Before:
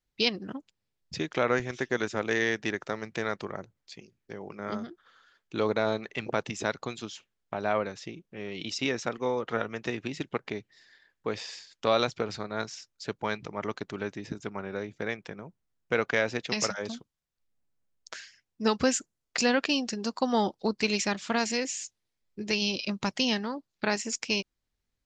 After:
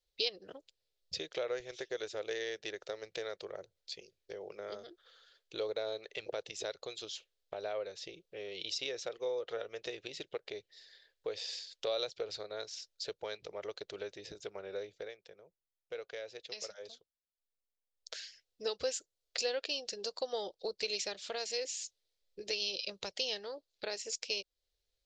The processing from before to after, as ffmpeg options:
ffmpeg -i in.wav -filter_complex "[0:a]asplit=3[link_01][link_02][link_03];[link_01]atrim=end=15.13,asetpts=PTS-STARTPTS,afade=type=out:start_time=14.85:duration=0.28:silence=0.223872[link_04];[link_02]atrim=start=15.13:end=17.91,asetpts=PTS-STARTPTS,volume=-13dB[link_05];[link_03]atrim=start=17.91,asetpts=PTS-STARTPTS,afade=type=in:duration=0.28:silence=0.223872[link_06];[link_04][link_05][link_06]concat=n=3:v=0:a=1,equalizer=frequency=230:width_type=o:width=0.43:gain=-8.5,acompressor=threshold=-41dB:ratio=2,equalizer=frequency=125:width_type=o:width=1:gain=-10,equalizer=frequency=250:width_type=o:width=1:gain=-12,equalizer=frequency=500:width_type=o:width=1:gain=11,equalizer=frequency=1000:width_type=o:width=1:gain=-9,equalizer=frequency=2000:width_type=o:width=1:gain=-3,equalizer=frequency=4000:width_type=o:width=1:gain=9,volume=-2.5dB" out.wav

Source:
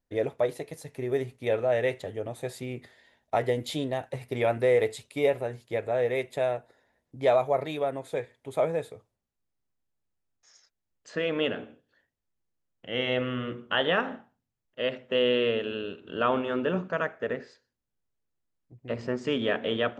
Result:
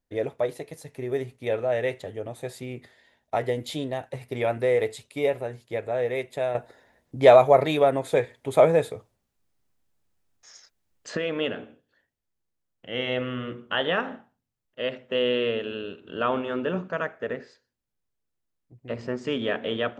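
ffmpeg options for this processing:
ffmpeg -i in.wav -filter_complex "[0:a]asplit=3[link_01][link_02][link_03];[link_01]atrim=end=6.552[link_04];[link_02]atrim=start=6.548:end=11.172,asetpts=PTS-STARTPTS,volume=9dB[link_05];[link_03]atrim=start=11.168[link_06];[link_04][link_05]acrossfade=duration=0.004:curve1=hsin:curve2=hsin[link_07];[link_07][link_06]acrossfade=duration=0.004:curve1=hsin:curve2=hsin" out.wav

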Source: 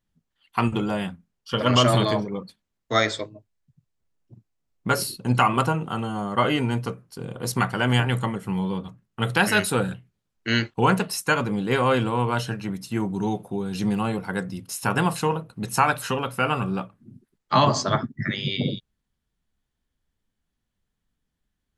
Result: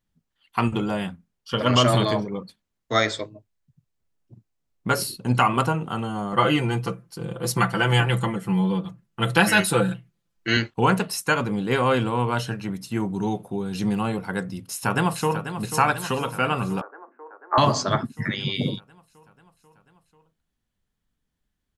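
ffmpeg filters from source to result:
ffmpeg -i in.wav -filter_complex "[0:a]asettb=1/sr,asplit=3[link_01][link_02][link_03];[link_01]atrim=end=6.324[link_04];[link_02]atrim=start=6.32:end=10.57,asetpts=PTS-STARTPTS,afade=type=in:duration=0.004:curve=qsin,afade=type=out:start_time=4.246:duration=0.004:curve=qsin,aecho=1:1:5.9:0.81,atrim=end_sample=187425[link_05];[link_03]atrim=start=10.566[link_06];[link_04][link_05]acrossfade=duration=0.004:curve1=hsin:curve2=qsin[link_07];[link_07][link_06]acrossfade=duration=0.004:curve1=qsin:curve2=hsin,asplit=2[link_08][link_09];[link_09]afade=type=in:start_time=14.57:duration=0.01,afade=type=out:start_time=15.51:duration=0.01,aecho=0:1:490|980|1470|1960|2450|2940|3430|3920|4410|4900:0.316228|0.221359|0.154952|0.108466|0.0759263|0.0531484|0.0372039|0.0260427|0.0182299|0.0127609[link_10];[link_08][link_10]amix=inputs=2:normalize=0,asettb=1/sr,asplit=3[link_11][link_12][link_13];[link_11]atrim=end=16.814[link_14];[link_12]atrim=start=16.81:end=17.58,asetpts=PTS-STARTPTS,afade=type=in:duration=0.004:curve=qsin,afade=type=out:start_time=0.766:duration=0.004:curve=qsin,asuperpass=centerf=760:order=12:qfactor=0.53[link_15];[link_13]atrim=start=17.576[link_16];[link_14][link_15]acrossfade=duration=0.004:curve1=hsin:curve2=qsin[link_17];[link_17][link_16]acrossfade=duration=0.004:curve1=qsin:curve2=hsin" out.wav

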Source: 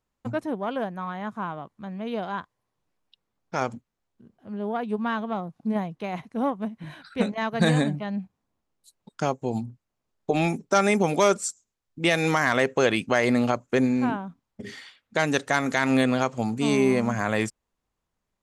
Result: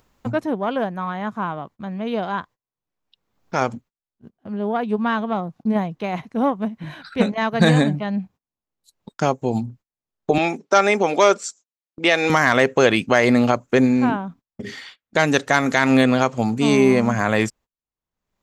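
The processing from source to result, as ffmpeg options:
ffmpeg -i in.wav -filter_complex "[0:a]asettb=1/sr,asplit=3[link_01][link_02][link_03];[link_01]atrim=end=10.384[link_04];[link_02]atrim=start=10.38:end=12.3,asetpts=PTS-STARTPTS,afade=type=in:duration=0.004:curve=qsin,afade=type=out:start_time=1.916:duration=0.004:curve=qsin,highpass=330,lowpass=6200[link_05];[link_03]atrim=start=12.296[link_06];[link_04][link_05]acrossfade=duration=0.004:curve1=hsin:curve2=qsin[link_07];[link_07][link_06]acrossfade=duration=0.004:curve1=qsin:curve2=hsin,agate=range=-27dB:threshold=-49dB:ratio=16:detection=peak,equalizer=frequency=9400:width=3.1:gain=-9,acompressor=mode=upward:threshold=-39dB:ratio=2.5,volume=6dB" out.wav

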